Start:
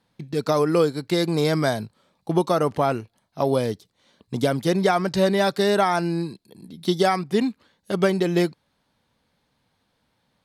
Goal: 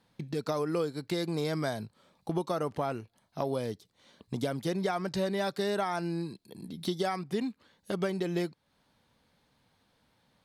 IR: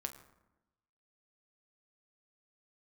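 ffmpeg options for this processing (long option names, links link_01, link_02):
-af "acompressor=threshold=-37dB:ratio=2"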